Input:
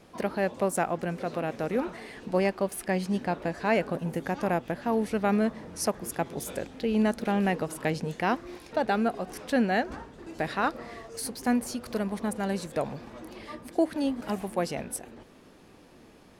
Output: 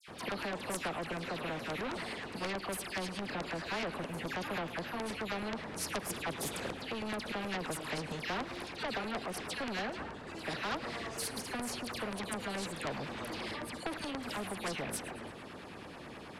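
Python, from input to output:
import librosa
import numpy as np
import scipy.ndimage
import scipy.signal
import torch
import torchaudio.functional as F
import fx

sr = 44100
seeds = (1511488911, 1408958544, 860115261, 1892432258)

p1 = scipy.signal.sosfilt(scipy.signal.butter(2, 88.0, 'highpass', fs=sr, output='sos'), x)
p2 = fx.peak_eq(p1, sr, hz=6100.0, db=-8.0, octaves=0.77)
p3 = fx.rider(p2, sr, range_db=10, speed_s=0.5)
p4 = p2 + (p3 * librosa.db_to_amplitude(-1.0))
p5 = fx.dispersion(p4, sr, late='lows', ms=82.0, hz=2100.0)
p6 = fx.filter_lfo_notch(p5, sr, shape='saw_down', hz=9.4, low_hz=320.0, high_hz=5100.0, q=1.1)
p7 = 10.0 ** (-20.0 / 20.0) * np.tanh(p6 / 10.0 ** (-20.0 / 20.0))
p8 = fx.air_absorb(p7, sr, metres=59.0)
p9 = p8 + fx.echo_feedback(p8, sr, ms=112, feedback_pct=53, wet_db=-23.0, dry=0)
y = fx.spectral_comp(p9, sr, ratio=2.0)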